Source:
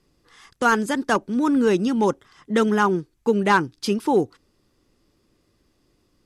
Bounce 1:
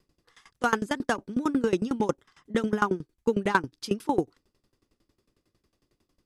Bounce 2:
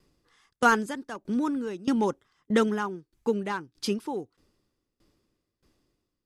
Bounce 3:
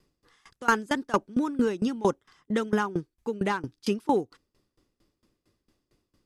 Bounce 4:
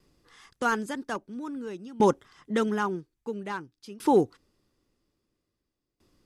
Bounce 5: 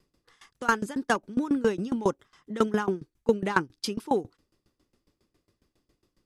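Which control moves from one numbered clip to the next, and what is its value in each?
tremolo with a ramp in dB, speed: 11, 1.6, 4.4, 0.5, 7.3 Hertz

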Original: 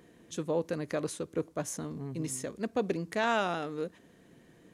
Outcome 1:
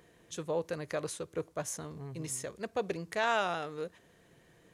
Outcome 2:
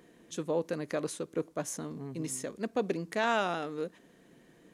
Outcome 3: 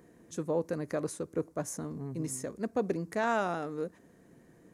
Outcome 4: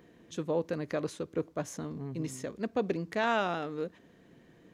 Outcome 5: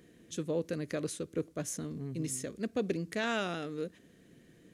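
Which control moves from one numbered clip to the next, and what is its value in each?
parametric band, centre frequency: 250, 86, 3,200, 9,800, 900 Hertz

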